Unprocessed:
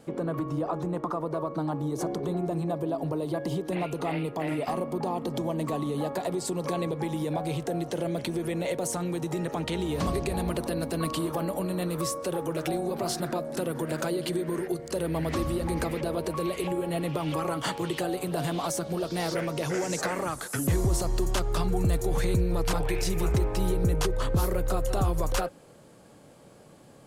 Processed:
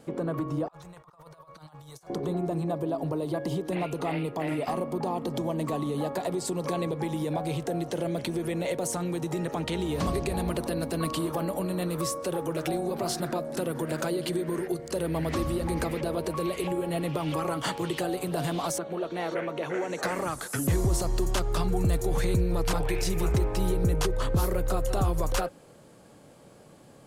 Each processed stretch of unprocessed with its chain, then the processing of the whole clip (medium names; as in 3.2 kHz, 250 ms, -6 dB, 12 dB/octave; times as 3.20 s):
0.68–2.10 s: amplifier tone stack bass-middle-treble 10-0-10 + compressor with a negative ratio -49 dBFS, ratio -0.5
18.78–20.03 s: Butterworth band-stop 5 kHz, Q 5.2 + three-band isolator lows -13 dB, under 230 Hz, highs -16 dB, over 3.3 kHz
whole clip: none